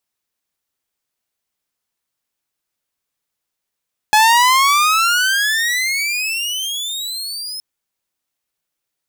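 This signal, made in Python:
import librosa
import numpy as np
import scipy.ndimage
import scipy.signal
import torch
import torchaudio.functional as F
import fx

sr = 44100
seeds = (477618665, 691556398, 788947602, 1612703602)

y = fx.riser_tone(sr, length_s=3.47, level_db=-5.5, wave='saw', hz=843.0, rise_st=31.5, swell_db=-16.0)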